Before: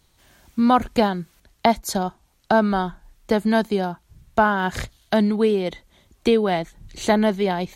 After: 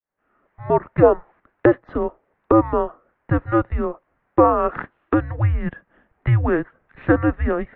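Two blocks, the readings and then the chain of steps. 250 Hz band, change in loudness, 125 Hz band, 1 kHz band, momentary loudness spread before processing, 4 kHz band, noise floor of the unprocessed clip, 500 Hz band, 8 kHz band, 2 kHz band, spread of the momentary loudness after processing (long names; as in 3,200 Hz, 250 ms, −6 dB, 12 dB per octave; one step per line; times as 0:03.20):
−0.5 dB, +1.0 dB, +9.0 dB, −1.5 dB, 12 LU, below −20 dB, −63 dBFS, +2.0 dB, below −40 dB, −3.0 dB, 12 LU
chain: fade in at the beginning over 1.20 s
low-shelf EQ 410 Hz −5.5 dB
gain on a spectral selection 0:01.03–0:01.32, 650–1,400 Hz +10 dB
single-sideband voice off tune −340 Hz 370–2,200 Hz
level +5.5 dB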